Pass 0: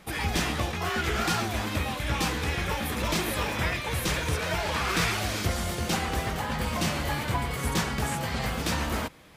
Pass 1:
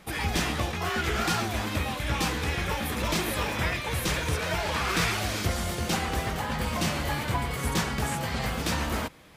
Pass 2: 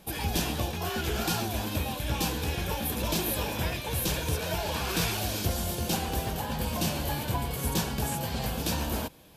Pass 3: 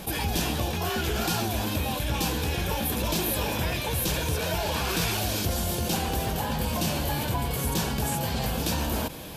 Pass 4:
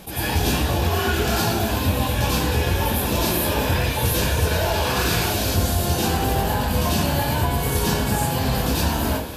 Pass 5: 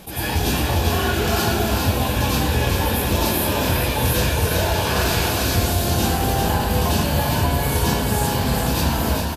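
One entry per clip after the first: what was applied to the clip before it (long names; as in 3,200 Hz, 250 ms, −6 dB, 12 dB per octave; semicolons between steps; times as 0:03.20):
no processing that can be heard
thirty-one-band graphic EQ 1,250 Hz −10 dB, 2,000 Hz −12 dB, 12,500 Hz +11 dB; level −1 dB
envelope flattener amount 50%
dense smooth reverb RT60 0.53 s, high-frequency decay 0.6×, pre-delay 80 ms, DRR −9 dB; level −3 dB
single-tap delay 399 ms −4.5 dB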